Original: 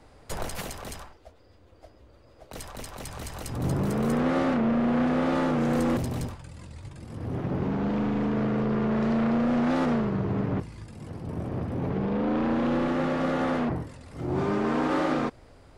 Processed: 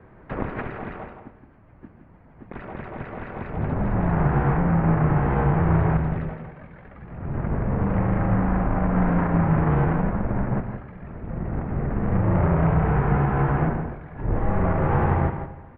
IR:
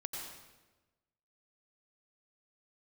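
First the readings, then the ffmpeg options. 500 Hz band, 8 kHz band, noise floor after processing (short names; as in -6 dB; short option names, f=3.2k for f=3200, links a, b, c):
+1.0 dB, n/a, -50 dBFS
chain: -filter_complex "[0:a]alimiter=limit=-20.5dB:level=0:latency=1:release=375,aeval=exprs='0.0944*(cos(1*acos(clip(val(0)/0.0944,-1,1)))-cos(1*PI/2))+0.00841*(cos(3*acos(clip(val(0)/0.0944,-1,1)))-cos(3*PI/2))':c=same,aecho=1:1:166:0.398,asplit=2[a][b];[1:a]atrim=start_sample=2205[c];[b][c]afir=irnorm=-1:irlink=0,volume=-8dB[d];[a][d]amix=inputs=2:normalize=0,highpass=f=240:t=q:w=0.5412,highpass=f=240:t=q:w=1.307,lowpass=f=2.5k:t=q:w=0.5176,lowpass=f=2.5k:t=q:w=0.7071,lowpass=f=2.5k:t=q:w=1.932,afreqshift=-400,volume=8.5dB"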